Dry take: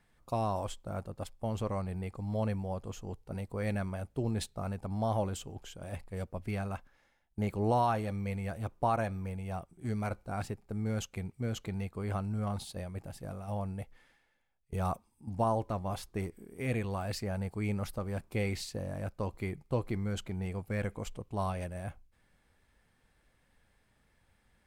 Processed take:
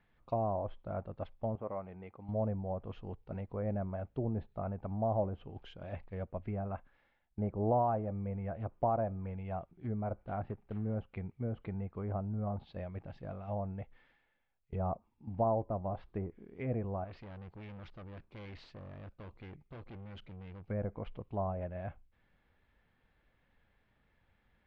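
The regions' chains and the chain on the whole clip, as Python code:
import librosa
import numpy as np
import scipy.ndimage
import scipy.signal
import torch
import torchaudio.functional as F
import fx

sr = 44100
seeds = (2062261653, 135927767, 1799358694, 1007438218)

y = fx.chain(x, sr, fx.highpass(hz=410.0, slope=6),
    fx.air_absorb(metres=450.0),
    fx.notch(hz=1700.0, q=14.0), at=(1.55, 2.29))
y = fx.chain(y, sr, fx.quant_float(bits=2),
    fx.air_absorb(metres=150.0), at=(10.15, 10.96))
y = fx.chain(y, sr, fx.peak_eq(hz=740.0, db=-3.5, octaves=1.6),
    fx.tube_stage(drive_db=43.0, bias=0.6), at=(17.04, 20.68))
y = scipy.signal.sosfilt(scipy.signal.butter(4, 3600.0, 'lowpass', fs=sr, output='sos'), y)
y = fx.env_lowpass_down(y, sr, base_hz=850.0, full_db=-31.0)
y = fx.dynamic_eq(y, sr, hz=640.0, q=3.4, threshold_db=-49.0, ratio=4.0, max_db=6)
y = y * 10.0 ** (-2.5 / 20.0)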